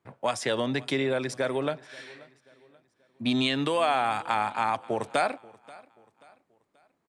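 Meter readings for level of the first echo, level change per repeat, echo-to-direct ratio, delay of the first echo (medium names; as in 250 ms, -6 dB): -22.5 dB, -8.0 dB, -22.0 dB, 533 ms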